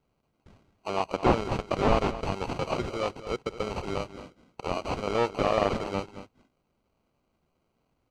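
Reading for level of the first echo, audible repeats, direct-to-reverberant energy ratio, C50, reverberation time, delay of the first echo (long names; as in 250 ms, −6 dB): −14.0 dB, 1, no reverb audible, no reverb audible, no reverb audible, 222 ms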